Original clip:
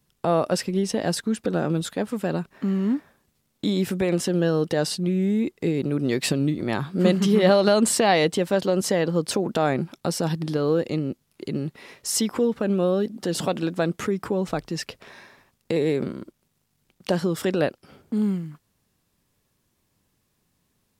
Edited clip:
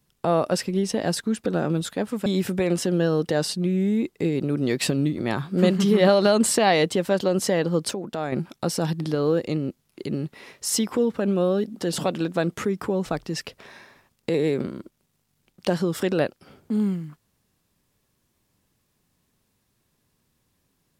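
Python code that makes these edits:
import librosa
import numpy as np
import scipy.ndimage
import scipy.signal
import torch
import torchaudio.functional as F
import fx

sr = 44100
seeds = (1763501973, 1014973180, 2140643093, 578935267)

y = fx.edit(x, sr, fx.cut(start_s=2.26, length_s=1.42),
    fx.clip_gain(start_s=9.33, length_s=0.41, db=-7.0), tone=tone)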